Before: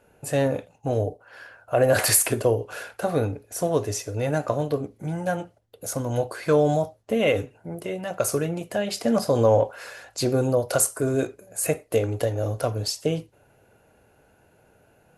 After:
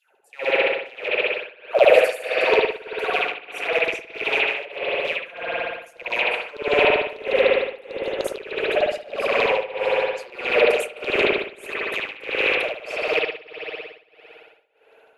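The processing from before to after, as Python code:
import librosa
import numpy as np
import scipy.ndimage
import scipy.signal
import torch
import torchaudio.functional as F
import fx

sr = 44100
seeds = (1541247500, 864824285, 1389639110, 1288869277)

y = fx.rattle_buzz(x, sr, strikes_db=-28.0, level_db=-13.0)
y = fx.filter_lfo_highpass(y, sr, shape='saw_down', hz=6.7, low_hz=380.0, high_hz=4000.0, q=8.0)
y = fx.rev_spring(y, sr, rt60_s=2.6, pass_ms=(56,), chirp_ms=20, drr_db=-8.5)
y = y * (1.0 - 0.91 / 2.0 + 0.91 / 2.0 * np.cos(2.0 * np.pi * 1.6 * (np.arange(len(y)) / sr)))
y = y * 10.0 ** (-9.0 / 20.0)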